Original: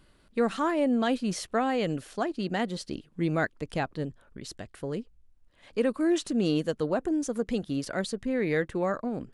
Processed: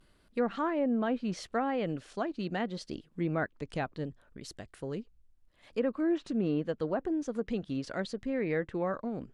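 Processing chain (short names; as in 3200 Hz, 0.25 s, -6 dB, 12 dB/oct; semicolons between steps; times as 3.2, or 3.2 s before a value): vibrato 0.75 Hz 54 cents; treble ducked by the level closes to 1800 Hz, closed at -21.5 dBFS; gain -4 dB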